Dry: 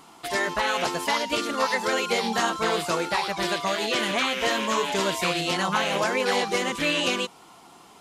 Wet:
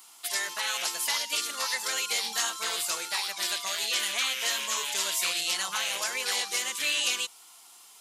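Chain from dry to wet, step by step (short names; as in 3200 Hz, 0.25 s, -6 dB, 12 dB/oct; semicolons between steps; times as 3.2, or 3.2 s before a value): differentiator; gain +6 dB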